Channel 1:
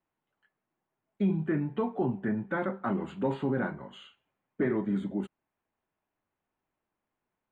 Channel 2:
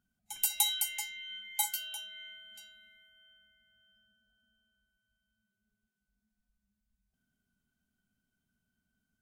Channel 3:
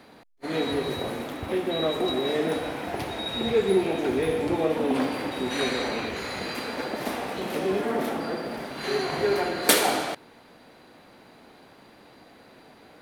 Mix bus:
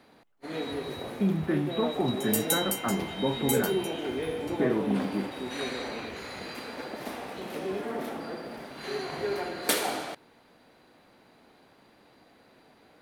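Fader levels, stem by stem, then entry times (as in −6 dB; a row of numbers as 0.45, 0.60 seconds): +1.0, 0.0, −7.0 decibels; 0.00, 1.90, 0.00 seconds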